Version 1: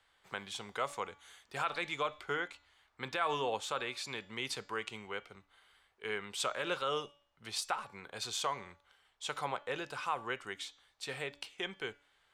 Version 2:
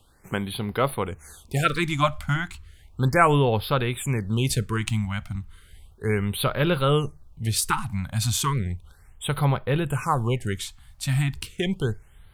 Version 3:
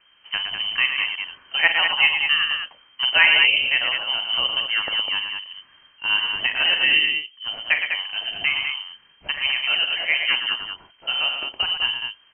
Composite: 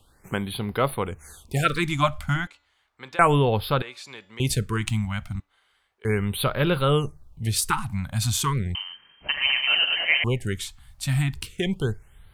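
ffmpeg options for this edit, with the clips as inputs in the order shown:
-filter_complex "[0:a]asplit=3[s0][s1][s2];[1:a]asplit=5[s3][s4][s5][s6][s7];[s3]atrim=end=2.472[s8];[s0]atrim=start=2.468:end=3.192[s9];[s4]atrim=start=3.188:end=3.822[s10];[s1]atrim=start=3.818:end=4.402[s11];[s5]atrim=start=4.398:end=5.402[s12];[s2]atrim=start=5.398:end=6.052[s13];[s6]atrim=start=6.048:end=8.752[s14];[2:a]atrim=start=8.748:end=10.242[s15];[s7]atrim=start=10.238[s16];[s8][s9]acrossfade=d=0.004:c1=hsin:c2=hsin[s17];[s17][s10]acrossfade=d=0.004:c1=hsin:c2=hsin[s18];[s18][s11]acrossfade=d=0.004:c1=hsin:c2=hsin[s19];[s19][s12]acrossfade=d=0.004:c1=hsin:c2=hsin[s20];[s20][s13]acrossfade=d=0.004:c1=hsin:c2=hsin[s21];[s21][s14]acrossfade=d=0.004:c1=hsin:c2=hsin[s22];[s22][s15]acrossfade=d=0.004:c1=hsin:c2=hsin[s23];[s23][s16]acrossfade=d=0.004:c1=hsin:c2=hsin"

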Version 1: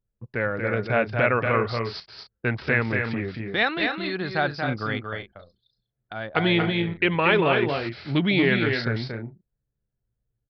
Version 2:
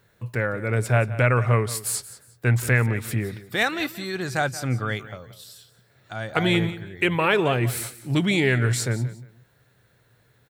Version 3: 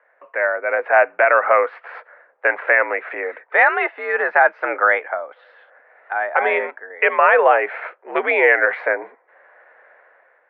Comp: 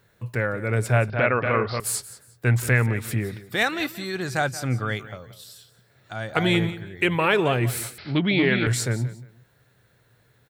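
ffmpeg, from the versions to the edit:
-filter_complex "[0:a]asplit=2[s0][s1];[1:a]asplit=3[s2][s3][s4];[s2]atrim=end=1.102[s5];[s0]atrim=start=1.098:end=1.802[s6];[s3]atrim=start=1.798:end=7.982[s7];[s1]atrim=start=7.978:end=8.672[s8];[s4]atrim=start=8.668[s9];[s5][s6]acrossfade=d=0.004:c1=hsin:c2=hsin[s10];[s10][s7]acrossfade=d=0.004:c1=hsin:c2=hsin[s11];[s11][s8]acrossfade=d=0.004:c1=hsin:c2=hsin[s12];[s12][s9]acrossfade=d=0.004:c1=hsin:c2=hsin"

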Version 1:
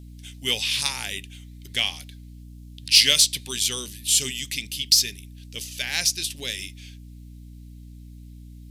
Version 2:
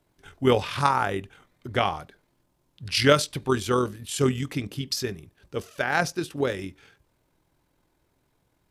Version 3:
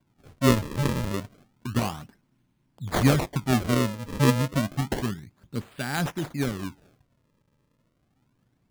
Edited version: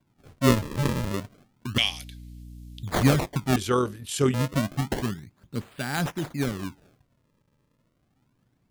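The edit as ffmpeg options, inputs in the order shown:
-filter_complex "[2:a]asplit=3[s0][s1][s2];[s0]atrim=end=1.782[s3];[0:a]atrim=start=1.778:end=2.832[s4];[s1]atrim=start=2.828:end=3.562[s5];[1:a]atrim=start=3.558:end=4.342[s6];[s2]atrim=start=4.338[s7];[s3][s4]acrossfade=d=0.004:c1=hsin:c2=hsin[s8];[s8][s5]acrossfade=d=0.004:c1=hsin:c2=hsin[s9];[s9][s6]acrossfade=d=0.004:c1=hsin:c2=hsin[s10];[s10][s7]acrossfade=d=0.004:c1=hsin:c2=hsin"

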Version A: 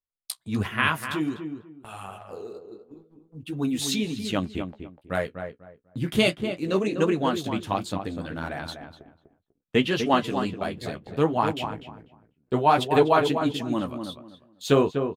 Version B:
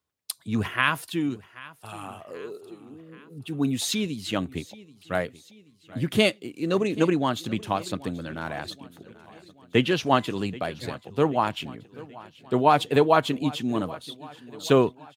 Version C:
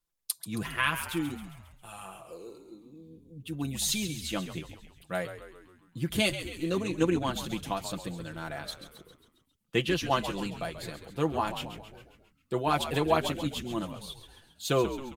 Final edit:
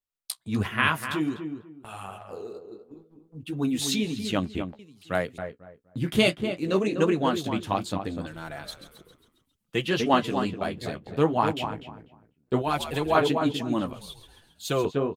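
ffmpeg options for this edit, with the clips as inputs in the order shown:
-filter_complex "[2:a]asplit=3[s0][s1][s2];[0:a]asplit=5[s3][s4][s5][s6][s7];[s3]atrim=end=4.792[s8];[1:a]atrim=start=4.788:end=5.382[s9];[s4]atrim=start=5.378:end=8.272[s10];[s0]atrim=start=8.268:end=9.882[s11];[s5]atrim=start=9.878:end=12.622[s12];[s1]atrim=start=12.618:end=13.152[s13];[s6]atrim=start=13.148:end=13.932[s14];[s2]atrim=start=13.928:end=14.852[s15];[s7]atrim=start=14.848[s16];[s8][s9]acrossfade=d=0.004:c1=hsin:c2=hsin[s17];[s17][s10]acrossfade=d=0.004:c1=hsin:c2=hsin[s18];[s18][s11]acrossfade=d=0.004:c1=hsin:c2=hsin[s19];[s19][s12]acrossfade=d=0.004:c1=hsin:c2=hsin[s20];[s20][s13]acrossfade=d=0.004:c1=hsin:c2=hsin[s21];[s21][s14]acrossfade=d=0.004:c1=hsin:c2=hsin[s22];[s22][s15]acrossfade=d=0.004:c1=hsin:c2=hsin[s23];[s23][s16]acrossfade=d=0.004:c1=hsin:c2=hsin"

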